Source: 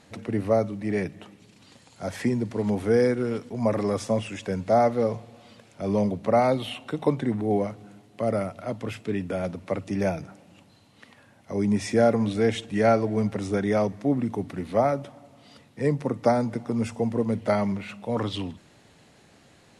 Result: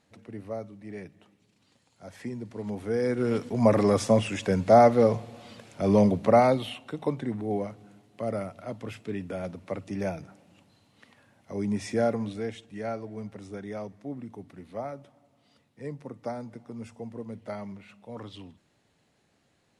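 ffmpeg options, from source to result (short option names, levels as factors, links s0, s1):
-af "volume=1.5,afade=t=in:st=2.05:d=0.97:silence=0.473151,afade=t=in:st=3.02:d=0.39:silence=0.298538,afade=t=out:st=6.16:d=0.66:silence=0.354813,afade=t=out:st=12.06:d=0.51:silence=0.398107"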